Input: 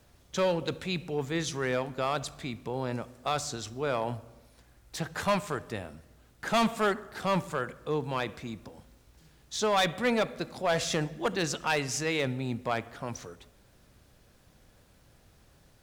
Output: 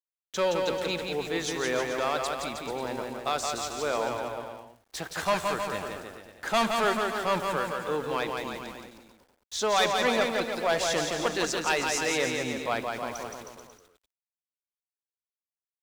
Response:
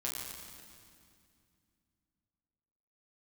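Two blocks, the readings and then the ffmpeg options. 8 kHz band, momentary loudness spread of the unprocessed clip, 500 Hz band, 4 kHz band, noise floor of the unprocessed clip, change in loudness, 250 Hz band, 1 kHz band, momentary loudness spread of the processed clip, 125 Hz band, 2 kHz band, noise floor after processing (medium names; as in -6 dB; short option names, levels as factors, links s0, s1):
+3.5 dB, 12 LU, +2.5 dB, +3.5 dB, -61 dBFS, +2.5 dB, -1.0 dB, +3.5 dB, 14 LU, -6.5 dB, +3.5 dB, under -85 dBFS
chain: -af "aeval=exprs='val(0)*gte(abs(val(0)),0.00501)':c=same,equalizer=f=130:t=o:w=1.3:g=-12.5,aecho=1:1:170|314.5|437.3|541.7|630.5:0.631|0.398|0.251|0.158|0.1,volume=1.19"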